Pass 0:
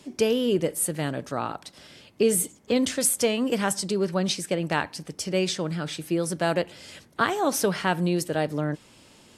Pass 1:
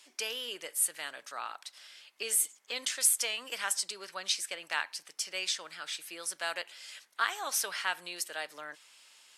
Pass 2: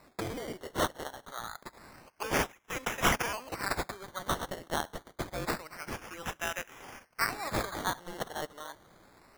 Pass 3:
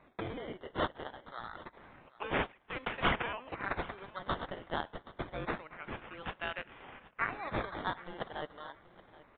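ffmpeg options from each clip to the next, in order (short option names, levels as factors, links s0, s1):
-af "highpass=1400,volume=0.794"
-af "acrusher=samples=14:mix=1:aa=0.000001:lfo=1:lforange=8.4:lforate=0.27"
-af "aecho=1:1:775|1550:0.112|0.0247,aresample=8000,aresample=44100,volume=0.708"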